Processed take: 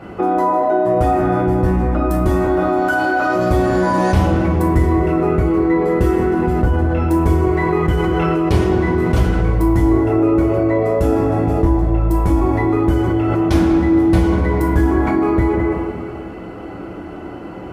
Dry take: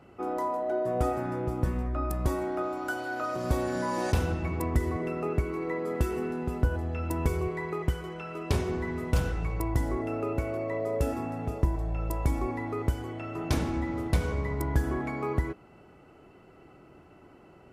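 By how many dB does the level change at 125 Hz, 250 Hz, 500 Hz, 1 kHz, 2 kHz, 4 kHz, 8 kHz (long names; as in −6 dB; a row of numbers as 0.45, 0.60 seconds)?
+13.0 dB, +18.0 dB, +15.0 dB, +15.5 dB, +13.5 dB, +9.5 dB, can't be measured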